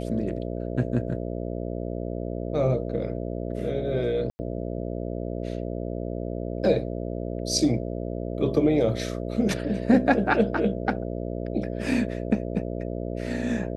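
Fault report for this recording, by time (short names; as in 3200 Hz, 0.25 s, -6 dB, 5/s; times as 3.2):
buzz 60 Hz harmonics 11 -31 dBFS
4.3–4.39 gap 90 ms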